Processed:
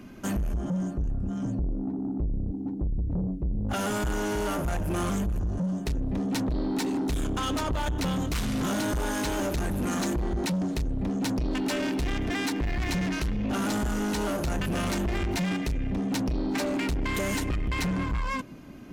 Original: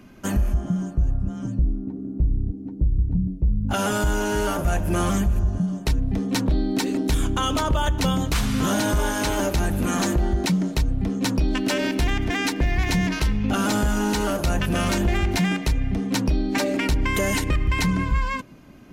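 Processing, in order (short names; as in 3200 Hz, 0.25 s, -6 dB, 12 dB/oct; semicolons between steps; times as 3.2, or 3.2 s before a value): bell 280 Hz +3 dB 1.1 oct; in parallel at -1 dB: limiter -21 dBFS, peak gain reduction 9 dB; on the sum: soft clip -19.5 dBFS, distortion -11 dB; gain -5 dB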